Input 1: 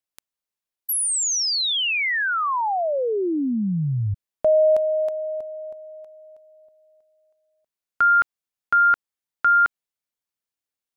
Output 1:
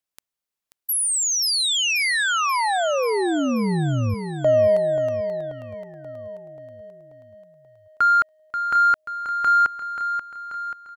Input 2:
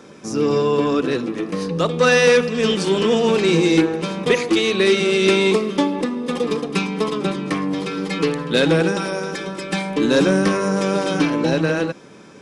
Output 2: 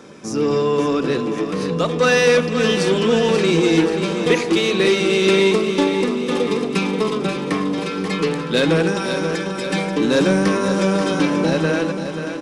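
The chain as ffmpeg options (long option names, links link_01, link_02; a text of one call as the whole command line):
ffmpeg -i in.wav -filter_complex "[0:a]asplit=2[link_01][link_02];[link_02]asoftclip=type=tanh:threshold=-21dB,volume=-6.5dB[link_03];[link_01][link_03]amix=inputs=2:normalize=0,aecho=1:1:534|1068|1602|2136|2670|3204|3738:0.376|0.21|0.118|0.066|0.037|0.0207|0.0116,volume=-2dB" out.wav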